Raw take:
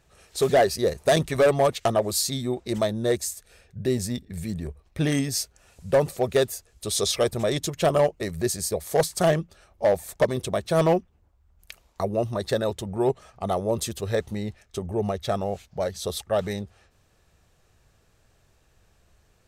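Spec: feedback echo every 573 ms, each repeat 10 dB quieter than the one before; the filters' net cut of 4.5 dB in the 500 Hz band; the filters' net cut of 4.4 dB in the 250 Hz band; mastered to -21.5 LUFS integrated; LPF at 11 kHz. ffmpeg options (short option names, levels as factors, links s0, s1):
-af "lowpass=11000,equalizer=f=250:t=o:g=-5,equalizer=f=500:t=o:g=-4.5,aecho=1:1:573|1146|1719|2292:0.316|0.101|0.0324|0.0104,volume=2.24"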